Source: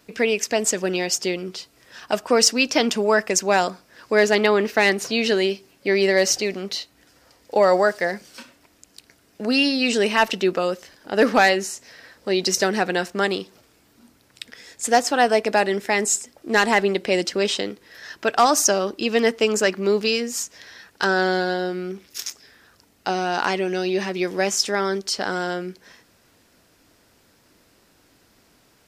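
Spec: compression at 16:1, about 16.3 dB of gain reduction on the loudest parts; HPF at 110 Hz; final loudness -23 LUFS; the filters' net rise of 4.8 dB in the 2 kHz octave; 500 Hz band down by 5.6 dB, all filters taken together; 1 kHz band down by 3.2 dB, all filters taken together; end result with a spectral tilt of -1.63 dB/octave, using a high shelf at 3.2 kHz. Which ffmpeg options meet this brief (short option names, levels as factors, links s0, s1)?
-af "highpass=110,equalizer=f=500:t=o:g=-7,equalizer=f=1000:t=o:g=-3.5,equalizer=f=2000:t=o:g=5,highshelf=f=3200:g=7,acompressor=threshold=0.0631:ratio=16,volume=2"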